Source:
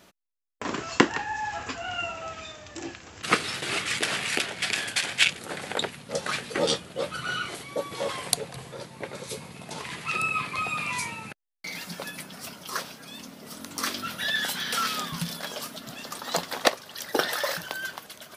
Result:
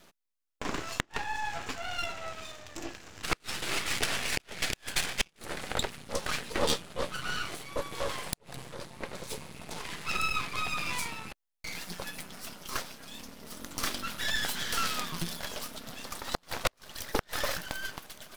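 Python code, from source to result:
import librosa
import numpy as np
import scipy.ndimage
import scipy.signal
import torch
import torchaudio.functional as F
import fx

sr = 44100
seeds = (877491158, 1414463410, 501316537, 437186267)

y = fx.gate_flip(x, sr, shuts_db=-10.0, range_db=-35)
y = np.maximum(y, 0.0)
y = F.gain(torch.from_numpy(y), 1.0).numpy()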